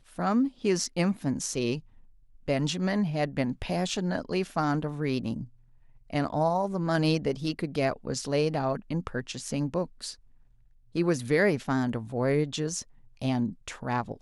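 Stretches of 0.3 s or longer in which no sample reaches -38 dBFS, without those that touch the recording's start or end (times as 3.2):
1.79–2.48
5.44–6.1
10.13–10.95
12.82–13.22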